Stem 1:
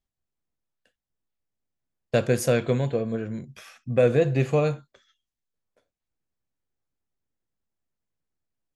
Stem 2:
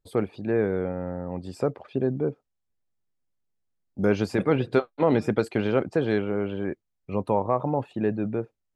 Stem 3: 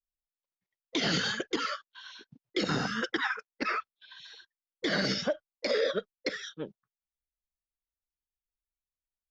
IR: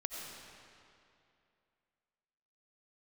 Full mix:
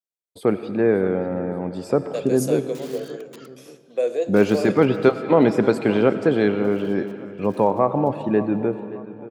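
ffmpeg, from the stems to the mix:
-filter_complex "[0:a]highpass=f=400:w=0.5412,highpass=f=400:w=1.3066,equalizer=f=1.6k:w=0.55:g=-15,dynaudnorm=f=820:g=5:m=7dB,volume=-5dB,asplit=3[a][b][c];[b]volume=-11.5dB[d];[1:a]lowshelf=f=240:g=6,agate=range=-33dB:threshold=-47dB:ratio=3:detection=peak,adelay=300,volume=2dB,asplit=3[e][f][g];[f]volume=-6.5dB[h];[g]volume=-14.5dB[i];[2:a]aeval=exprs='(mod(13.3*val(0)+1,2)-1)/13.3':c=same,adelay=1800,volume=-16dB,asplit=2[j][k];[k]volume=-22.5dB[l];[c]apad=whole_len=489727[m];[j][m]sidechaingate=range=-14dB:threshold=-53dB:ratio=16:detection=peak[n];[3:a]atrim=start_sample=2205[o];[d][h][l]amix=inputs=3:normalize=0[p];[p][o]afir=irnorm=-1:irlink=0[q];[i]aecho=0:1:579|1158|1737|2316|2895|3474:1|0.42|0.176|0.0741|0.0311|0.0131[r];[a][e][n][q][r]amix=inputs=5:normalize=0,highpass=190"

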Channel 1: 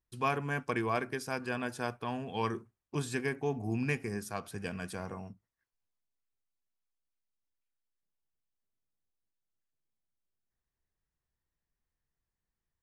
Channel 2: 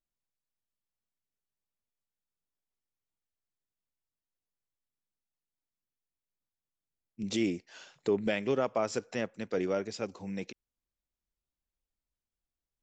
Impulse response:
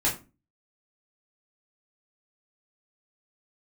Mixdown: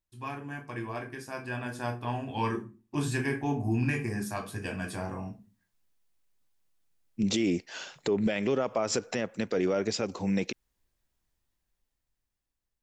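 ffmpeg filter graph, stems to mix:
-filter_complex "[0:a]volume=-12dB,asplit=2[a][b];[b]volume=-7.5dB[c];[1:a]volume=0dB,asplit=3[d][e][f];[d]atrim=end=2.63,asetpts=PTS-STARTPTS,afade=t=out:st=2.626:d=0.004:c=hsin[g];[e]atrim=start=2.63:end=3.23,asetpts=PTS-STARTPTS,volume=0[h];[f]atrim=start=3.23,asetpts=PTS-STARTPTS,afade=t=in:d=0.004:c=hsin[i];[g][h][i]concat=n=3:v=0:a=1[j];[2:a]atrim=start_sample=2205[k];[c][k]afir=irnorm=-1:irlink=0[l];[a][j][l]amix=inputs=3:normalize=0,dynaudnorm=f=400:g=9:m=10.5dB,alimiter=limit=-18.5dB:level=0:latency=1:release=74"

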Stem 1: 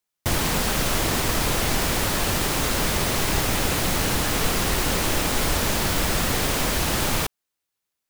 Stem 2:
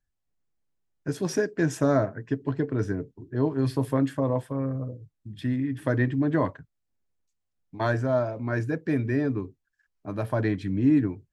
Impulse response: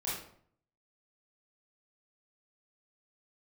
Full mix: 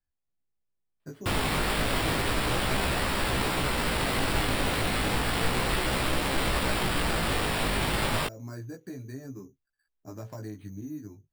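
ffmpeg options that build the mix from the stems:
-filter_complex "[0:a]adelay=1000,volume=-1.5dB[a];[1:a]highshelf=f=2.8k:g=-8.5,acompressor=threshold=-31dB:ratio=8,asoftclip=type=hard:threshold=-23dB,volume=-3dB[b];[a][b]amix=inputs=2:normalize=0,acrusher=samples=7:mix=1:aa=0.000001,flanger=delay=15:depth=4.6:speed=0.32"

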